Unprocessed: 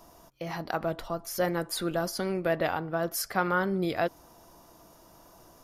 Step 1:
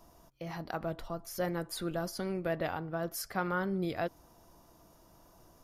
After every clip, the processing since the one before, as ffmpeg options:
-af "lowshelf=f=190:g=7,volume=0.447"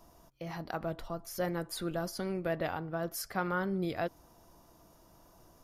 -af anull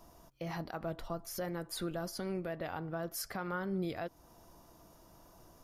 -af "alimiter=level_in=1.58:limit=0.0631:level=0:latency=1:release=297,volume=0.631,volume=1.12"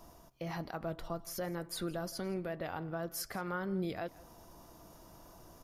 -af "areverse,acompressor=mode=upward:threshold=0.00355:ratio=2.5,areverse,aecho=1:1:166:0.0944"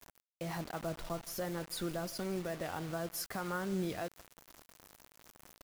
-af "acrusher=bits=7:mix=0:aa=0.000001"

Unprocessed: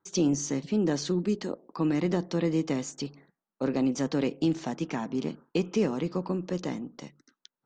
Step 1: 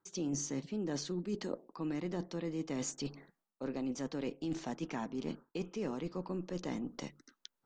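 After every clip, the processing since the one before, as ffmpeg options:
-af "areverse,acompressor=threshold=0.0158:ratio=6,areverse,asubboost=boost=4.5:cutoff=50,volume=1.19"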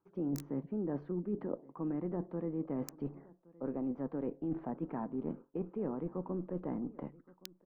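-filter_complex "[0:a]acrossover=split=1400[s0][s1];[s0]aecho=1:1:1119:0.075[s2];[s1]acrusher=bits=4:mix=0:aa=0.000001[s3];[s2][s3]amix=inputs=2:normalize=0,volume=1.12"

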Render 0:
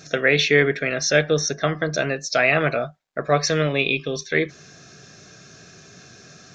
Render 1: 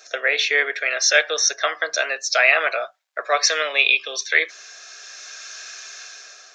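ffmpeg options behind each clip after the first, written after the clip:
-filter_complex "[0:a]highpass=f=540:w=0.5412,highpass=f=540:w=1.3066,acrossover=split=1200[s0][s1];[s1]dynaudnorm=f=210:g=7:m=4.73[s2];[s0][s2]amix=inputs=2:normalize=0,volume=0.891"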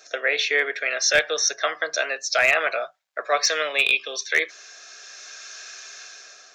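-af "asoftclip=type=hard:threshold=0.473,lowshelf=f=240:g=12,volume=0.708"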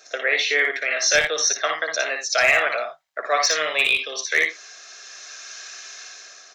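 -af "aecho=1:1:58|59|84:0.562|0.501|0.188"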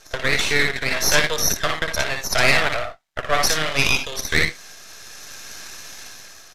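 -af "aeval=exprs='max(val(0),0)':c=same,aresample=32000,aresample=44100,volume=1.78"

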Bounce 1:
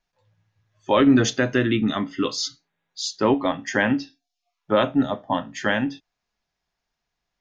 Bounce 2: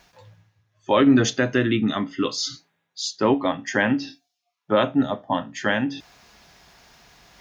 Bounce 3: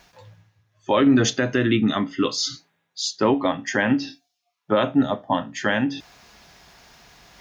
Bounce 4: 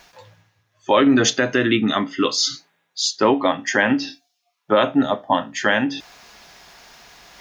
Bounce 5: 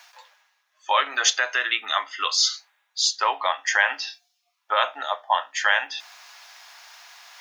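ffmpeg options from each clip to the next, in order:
-af "highpass=51,areverse,acompressor=mode=upward:threshold=0.0355:ratio=2.5,areverse"
-af "alimiter=limit=0.299:level=0:latency=1:release=68,volume=1.26"
-af "equalizer=f=92:w=0.43:g=-9,volume=1.78"
-af "highpass=f=790:w=0.5412,highpass=f=790:w=1.3066"

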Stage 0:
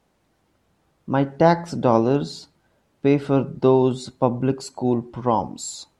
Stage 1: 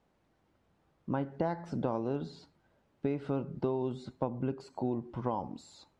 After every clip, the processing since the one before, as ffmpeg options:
-filter_complex "[0:a]acompressor=threshold=0.0708:ratio=6,aemphasis=mode=reproduction:type=50kf,acrossover=split=3000[s0][s1];[s1]acompressor=threshold=0.00251:ratio=4:attack=1:release=60[s2];[s0][s2]amix=inputs=2:normalize=0,volume=0.501"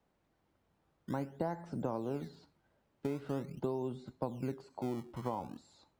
-filter_complex "[0:a]acrossover=split=200|860|2200[s0][s1][s2][s3];[s0]acrusher=samples=24:mix=1:aa=0.000001:lfo=1:lforange=38.4:lforate=0.44[s4];[s3]alimiter=level_in=31.6:limit=0.0631:level=0:latency=1,volume=0.0316[s5];[s4][s1][s2][s5]amix=inputs=4:normalize=0,volume=0.631"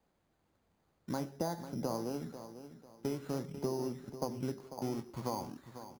-af "acrusher=samples=8:mix=1:aa=0.000001,flanger=delay=3.6:depth=9.3:regen=-74:speed=1.4:shape=sinusoidal,aecho=1:1:495|990|1485:0.251|0.0779|0.0241,volume=1.68"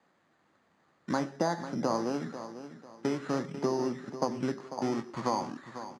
-af "highpass=180,equalizer=f=440:t=q:w=4:g=-3,equalizer=f=1200:t=q:w=4:g=6,equalizer=f=1800:t=q:w=4:g=8,equalizer=f=5500:t=q:w=4:g=-4,lowpass=f=7600:w=0.5412,lowpass=f=7600:w=1.3066,volume=2.37"

